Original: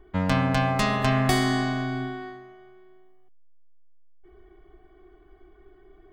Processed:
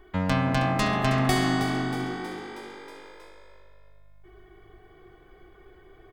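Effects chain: frequency-shifting echo 0.318 s, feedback 50%, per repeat +50 Hz, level -9.5 dB; mismatched tape noise reduction encoder only; gain -1.5 dB

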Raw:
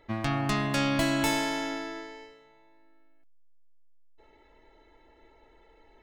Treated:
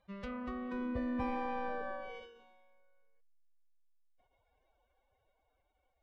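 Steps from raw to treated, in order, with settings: Doppler pass-by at 2, 12 m/s, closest 4.4 m; treble ducked by the level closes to 1100 Hz, closed at -36 dBFS; formant-preserving pitch shift +9.5 st; gain +1 dB

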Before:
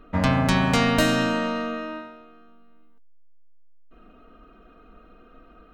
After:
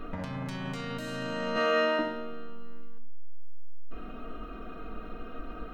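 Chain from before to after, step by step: 1.56–1.99 HPF 440 Hz 12 dB/oct; negative-ratio compressor -33 dBFS, ratio -1; shoebox room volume 75 m³, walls mixed, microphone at 0.37 m

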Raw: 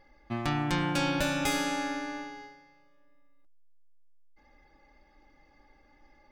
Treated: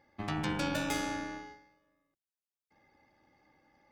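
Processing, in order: octaver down 2 oct, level +1 dB; HPF 110 Hz 12 dB/oct; granular stretch 0.62×, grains 24 ms; gain -3.5 dB

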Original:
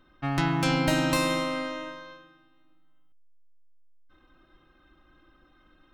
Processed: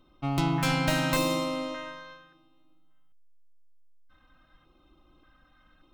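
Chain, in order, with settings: tracing distortion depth 0.17 ms; LFO notch square 0.86 Hz 370–1700 Hz

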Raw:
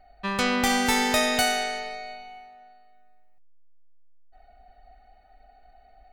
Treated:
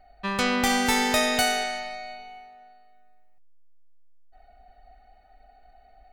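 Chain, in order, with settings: 1.63–2.19 notch 440 Hz

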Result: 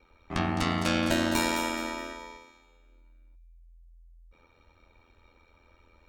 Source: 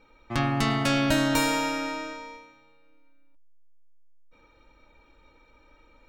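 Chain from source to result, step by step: ring modulator 42 Hz; thin delay 0.211 s, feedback 31%, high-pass 4200 Hz, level -6 dB

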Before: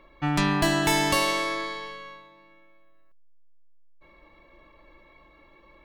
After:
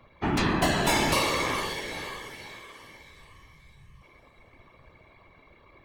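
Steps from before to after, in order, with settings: diffused feedback echo 0.471 s, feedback 44%, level -9 dB; whisperiser; gain -1.5 dB

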